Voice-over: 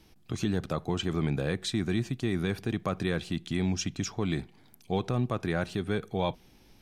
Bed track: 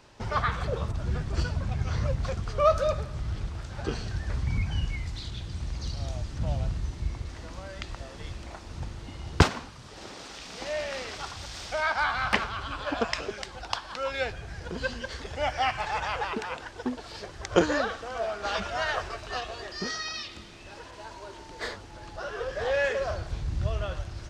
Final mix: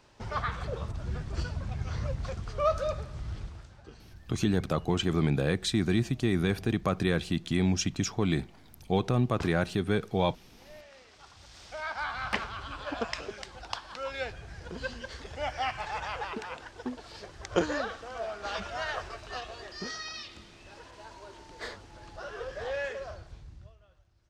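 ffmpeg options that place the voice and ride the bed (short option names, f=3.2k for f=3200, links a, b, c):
-filter_complex "[0:a]adelay=4000,volume=2.5dB[a];[1:a]volume=9dB,afade=t=out:st=3.36:d=0.45:silence=0.199526,afade=t=in:st=11.11:d=1.37:silence=0.199526,afade=t=out:st=22.42:d=1.34:silence=0.0562341[b];[a][b]amix=inputs=2:normalize=0"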